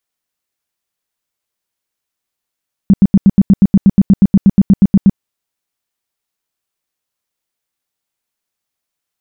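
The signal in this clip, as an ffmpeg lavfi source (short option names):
-f lavfi -i "aevalsrc='0.794*sin(2*PI*196*mod(t,0.12))*lt(mod(t,0.12),7/196)':d=2.28:s=44100"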